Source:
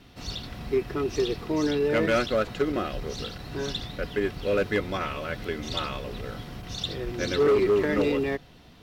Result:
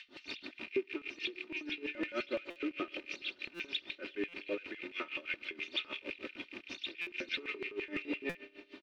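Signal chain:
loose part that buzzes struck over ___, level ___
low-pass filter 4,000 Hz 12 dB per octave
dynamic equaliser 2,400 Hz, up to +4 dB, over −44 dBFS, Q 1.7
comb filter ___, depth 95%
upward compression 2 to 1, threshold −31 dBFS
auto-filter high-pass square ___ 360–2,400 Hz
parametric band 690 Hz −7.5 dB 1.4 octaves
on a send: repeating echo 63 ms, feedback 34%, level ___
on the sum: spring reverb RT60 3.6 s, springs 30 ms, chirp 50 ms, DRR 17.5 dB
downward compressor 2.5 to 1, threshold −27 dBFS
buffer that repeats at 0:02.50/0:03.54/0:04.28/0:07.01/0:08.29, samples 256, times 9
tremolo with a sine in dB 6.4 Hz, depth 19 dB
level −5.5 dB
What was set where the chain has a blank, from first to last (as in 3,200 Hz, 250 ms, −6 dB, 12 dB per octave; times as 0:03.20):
−36 dBFS, −26 dBFS, 3.3 ms, 5.9 Hz, −22.5 dB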